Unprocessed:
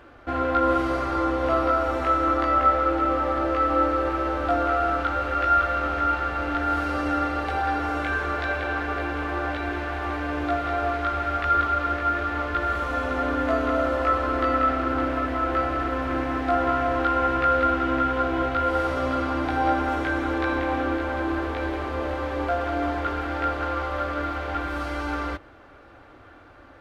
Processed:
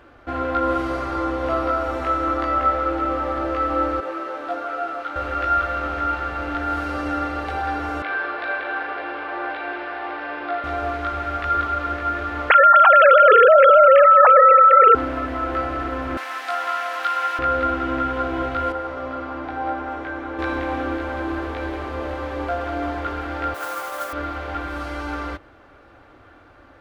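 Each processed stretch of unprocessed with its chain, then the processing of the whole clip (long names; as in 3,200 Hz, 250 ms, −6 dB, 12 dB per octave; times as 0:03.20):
0:04.00–0:05.16: high-pass filter 310 Hz + micro pitch shift up and down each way 15 cents
0:08.02–0:10.64: flutter between parallel walls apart 6.8 metres, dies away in 0.35 s + bad sample-rate conversion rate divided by 4×, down none, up filtered + band-pass filter 390–3,800 Hz
0:12.50–0:14.95: three sine waves on the formant tracks + high-shelf EQ 2,900 Hz +9 dB + envelope flattener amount 100%
0:16.17–0:17.39: high-pass filter 700 Hz + spectral tilt +4 dB per octave
0:18.72–0:20.39: low-pass filter 1,300 Hz 6 dB per octave + low-shelf EQ 340 Hz −9.5 dB
0:23.54–0:24.13: high-pass filter 520 Hz + noise that follows the level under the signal 12 dB
whole clip: no processing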